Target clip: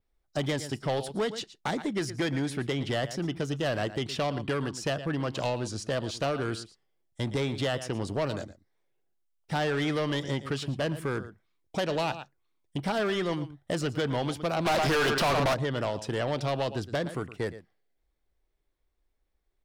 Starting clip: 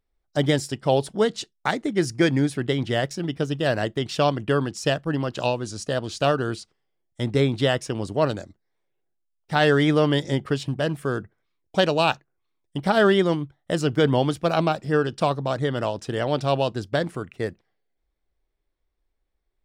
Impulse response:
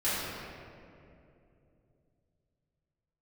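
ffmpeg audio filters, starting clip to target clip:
-filter_complex "[0:a]asplit=2[link_01][link_02];[link_02]aecho=0:1:114:0.126[link_03];[link_01][link_03]amix=inputs=2:normalize=0,acrossover=split=680|3600[link_04][link_05][link_06];[link_04]acompressor=threshold=-26dB:ratio=4[link_07];[link_05]acompressor=threshold=-27dB:ratio=4[link_08];[link_06]acompressor=threshold=-39dB:ratio=4[link_09];[link_07][link_08][link_09]amix=inputs=3:normalize=0,asplit=3[link_10][link_11][link_12];[link_10]afade=type=out:start_time=14.65:duration=0.02[link_13];[link_11]asplit=2[link_14][link_15];[link_15]highpass=frequency=720:poles=1,volume=33dB,asoftclip=type=tanh:threshold=-14dB[link_16];[link_14][link_16]amix=inputs=2:normalize=0,lowpass=frequency=4700:poles=1,volume=-6dB,afade=type=in:start_time=14.65:duration=0.02,afade=type=out:start_time=15.53:duration=0.02[link_17];[link_12]afade=type=in:start_time=15.53:duration=0.02[link_18];[link_13][link_17][link_18]amix=inputs=3:normalize=0,asoftclip=type=tanh:threshold=-22.5dB,adynamicequalizer=threshold=0.00224:dfrequency=8000:dqfactor=1.9:tfrequency=8000:tqfactor=1.9:attack=5:release=100:ratio=0.375:range=2:mode=cutabove:tftype=bell"

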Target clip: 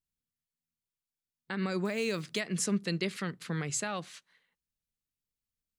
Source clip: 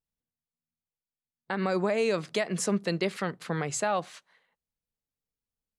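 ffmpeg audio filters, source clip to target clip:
ffmpeg -i in.wav -filter_complex "[0:a]equalizer=frequency=720:width=0.83:gain=-12,asettb=1/sr,asplit=3[link_01][link_02][link_03];[link_01]atrim=end=1.854[link_04];[link_02]atrim=start=1.85:end=2.4,asetpts=PTS-STARTPTS,afade=type=in:duration=0.004:curve=qsin,afade=type=out:start_time=0.546:duration=0.004:curve=qsin,acrusher=bits=7:mode=log:mix=0:aa=0.000001[link_05];[link_03]atrim=start=2.396[link_06];[link_04][link_05]acrossfade=duration=0.004:curve1=hsin:curve2=qsin[link_07];[link_07][link_06]acrossfade=duration=0.004:curve1=qsin:curve2=hsin" out.wav

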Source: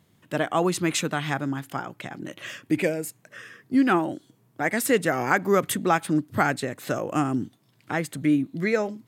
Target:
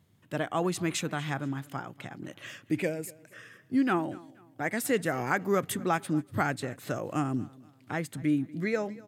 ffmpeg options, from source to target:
ffmpeg -i in.wav -filter_complex "[0:a]equalizer=frequency=84:width=0.96:gain=7.5,asplit=2[link_01][link_02];[link_02]aecho=0:1:239|478|717:0.0794|0.0286|0.0103[link_03];[link_01][link_03]amix=inputs=2:normalize=0,volume=-6.5dB" out.wav

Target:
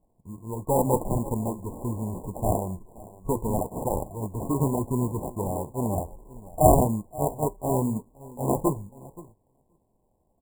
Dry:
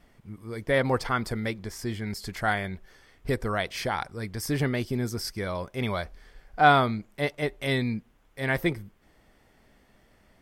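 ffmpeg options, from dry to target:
ffmpeg -i in.wav -filter_complex "[0:a]asplit=2[link_01][link_02];[link_02]adelay=527,lowpass=frequency=1600:poles=1,volume=-19dB,asplit=2[link_03][link_04];[link_04]adelay=527,lowpass=frequency=1600:poles=1,volume=0.24[link_05];[link_01][link_03][link_05]amix=inputs=3:normalize=0,flanger=delay=6.8:depth=7.2:regen=-59:speed=1.6:shape=triangular,agate=range=-12dB:threshold=-56dB:ratio=16:detection=peak,acrusher=samples=32:mix=1:aa=0.000001,afftfilt=real='re*(1-between(b*sr/4096,1100,6900))':imag='im*(1-between(b*sr/4096,1100,6900))':win_size=4096:overlap=0.75,volume=6.5dB" out.wav

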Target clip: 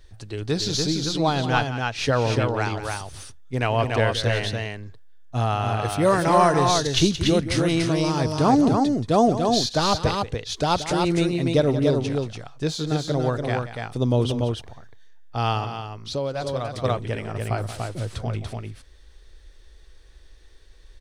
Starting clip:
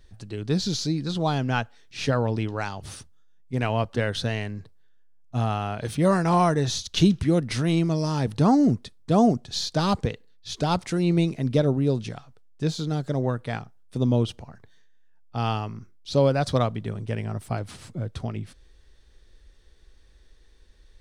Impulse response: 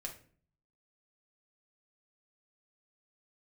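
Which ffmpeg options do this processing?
-filter_complex "[0:a]equalizer=frequency=190:width_type=o:width=0.98:gain=-8.5,aecho=1:1:178|289:0.237|0.631,asettb=1/sr,asplit=3[link_01][link_02][link_03];[link_01]atrim=end=15.644[link_04];[link_02]atrim=start=15.64:end=16.84,asetpts=PTS-STARTPTS,afade=type=in:duration=0.004:curve=qsin,afade=type=out:start_time=1.196:duration=0.004:curve=qsin,acompressor=threshold=-36dB:ratio=2[link_05];[link_03]atrim=start=16.836[link_06];[link_04][link_05]acrossfade=duration=0.004:curve1=hsin:curve2=qsin[link_07];[link_07][link_06]acrossfade=duration=0.004:curve1=qsin:curve2=hsin,volume=4dB"

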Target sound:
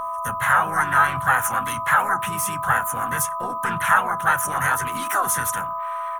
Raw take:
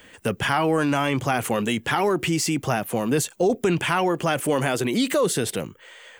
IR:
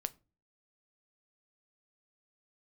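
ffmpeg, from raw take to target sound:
-filter_complex "[0:a]firequalizer=gain_entry='entry(140,0);entry(260,-13);entry(450,-16);entry(1300,5);entry(1900,-11);entry(3400,-11);entry(5300,-26);entry(9200,14);entry(14000,9)':delay=0.05:min_phase=1,acrossover=split=180|1000|2500[link_01][link_02][link_03][link_04];[link_03]dynaudnorm=framelen=200:gausssize=3:maxgain=16.5dB[link_05];[link_01][link_02][link_05][link_04]amix=inputs=4:normalize=0,aeval=exprs='val(0)+0.0794*sin(2*PI*1000*n/s)':channel_layout=same,asplit=4[link_06][link_07][link_08][link_09];[link_07]asetrate=29433,aresample=44100,atempo=1.49831,volume=-7dB[link_10];[link_08]asetrate=52444,aresample=44100,atempo=0.840896,volume=-8dB[link_11];[link_09]asetrate=55563,aresample=44100,atempo=0.793701,volume=-7dB[link_12];[link_06][link_10][link_11][link_12]amix=inputs=4:normalize=0[link_13];[1:a]atrim=start_sample=2205,asetrate=79380,aresample=44100[link_14];[link_13][link_14]afir=irnorm=-1:irlink=0"

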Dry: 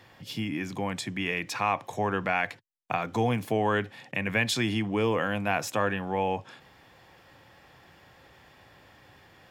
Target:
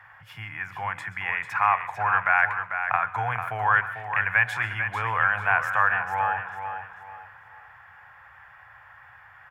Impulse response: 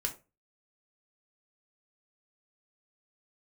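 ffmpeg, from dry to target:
-filter_complex "[0:a]firequalizer=gain_entry='entry(110,0);entry(240,-25);entry(800,7);entry(1500,15);entry(2600,0);entry(4000,-15);entry(11000,-7)':delay=0.05:min_phase=1,aecho=1:1:445|890|1335|1780:0.398|0.127|0.0408|0.013,asplit=2[link_01][link_02];[1:a]atrim=start_sample=2205,adelay=130[link_03];[link_02][link_03]afir=irnorm=-1:irlink=0,volume=-18.5dB[link_04];[link_01][link_04]amix=inputs=2:normalize=0,volume=-2.5dB"

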